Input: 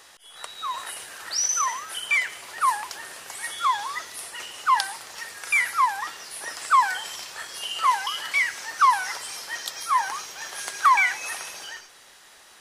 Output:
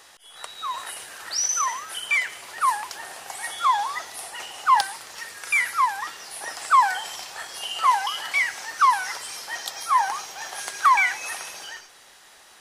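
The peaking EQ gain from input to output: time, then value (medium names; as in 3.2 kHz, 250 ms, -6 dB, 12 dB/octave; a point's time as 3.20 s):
peaking EQ 770 Hz 0.44 oct
+2 dB
from 2.99 s +11 dB
from 4.81 s -0.5 dB
from 6.23 s +8 dB
from 8.65 s +0.5 dB
from 9.47 s +9 dB
from 10.64 s +2.5 dB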